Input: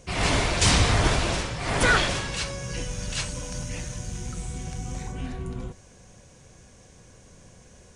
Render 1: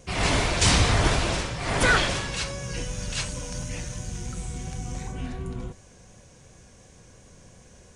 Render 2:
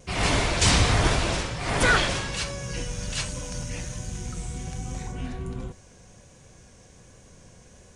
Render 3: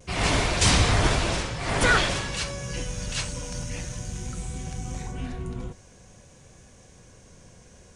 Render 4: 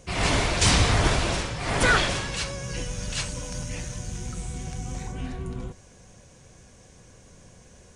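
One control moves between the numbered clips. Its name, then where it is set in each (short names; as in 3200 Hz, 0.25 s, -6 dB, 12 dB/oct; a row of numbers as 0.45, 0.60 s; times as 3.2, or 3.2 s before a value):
vibrato, rate: 2.8, 1.3, 0.5, 7.6 Hz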